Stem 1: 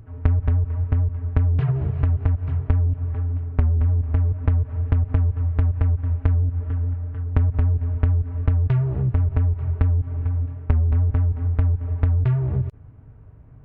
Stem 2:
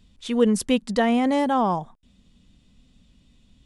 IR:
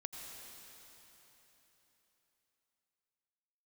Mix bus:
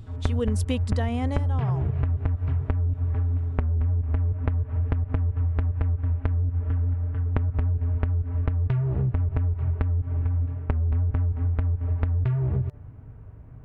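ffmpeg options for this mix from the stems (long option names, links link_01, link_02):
-filter_complex "[0:a]bandreject=frequency=146.7:width_type=h:width=4,bandreject=frequency=293.4:width_type=h:width=4,bandreject=frequency=440.1:width_type=h:width=4,bandreject=frequency=586.8:width_type=h:width=4,bandreject=frequency=733.5:width_type=h:width=4,bandreject=frequency=880.2:width_type=h:width=4,bandreject=frequency=1026.9:width_type=h:width=4,bandreject=frequency=1173.6:width_type=h:width=4,bandreject=frequency=1320.3:width_type=h:width=4,bandreject=frequency=1467:width_type=h:width=4,bandreject=frequency=1613.7:width_type=h:width=4,bandreject=frequency=1760.4:width_type=h:width=4,bandreject=frequency=1907.1:width_type=h:width=4,volume=2dB[link_01];[1:a]volume=-1dB,afade=type=out:start_time=0.89:duration=0.53:silence=0.354813[link_02];[link_01][link_02]amix=inputs=2:normalize=0,acompressor=threshold=-21dB:ratio=6"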